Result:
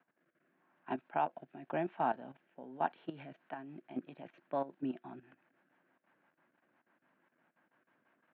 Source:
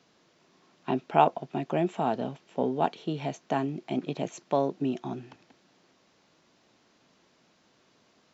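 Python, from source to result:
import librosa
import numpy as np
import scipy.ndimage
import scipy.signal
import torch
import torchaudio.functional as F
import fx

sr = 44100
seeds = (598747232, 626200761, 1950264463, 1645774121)

y = fx.env_lowpass(x, sr, base_hz=2200.0, full_db=-22.5)
y = fx.rotary_switch(y, sr, hz=0.9, then_hz=6.0, switch_at_s=3.0)
y = fx.level_steps(y, sr, step_db=14)
y = fx.cabinet(y, sr, low_hz=200.0, low_slope=12, high_hz=2800.0, hz=(210.0, 430.0, 900.0, 1600.0), db=(-3, -9, 4, 9))
y = F.gain(torch.from_numpy(y), -3.5).numpy()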